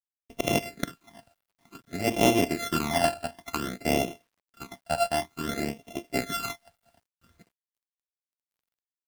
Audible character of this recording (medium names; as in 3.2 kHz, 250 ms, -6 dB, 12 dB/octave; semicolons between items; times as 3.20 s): a buzz of ramps at a fixed pitch in blocks of 64 samples; phasing stages 12, 0.55 Hz, lowest notch 360–1500 Hz; a quantiser's noise floor 12-bit, dither none; AAC